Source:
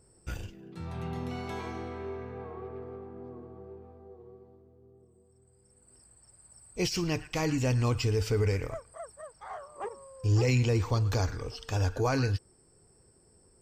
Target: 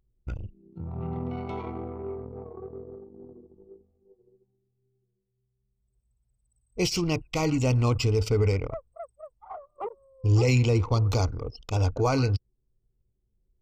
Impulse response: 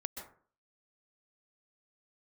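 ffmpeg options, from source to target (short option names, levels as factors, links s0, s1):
-af "asuperstop=centerf=1700:order=4:qfactor=3.2,anlmdn=1.58,volume=1.58"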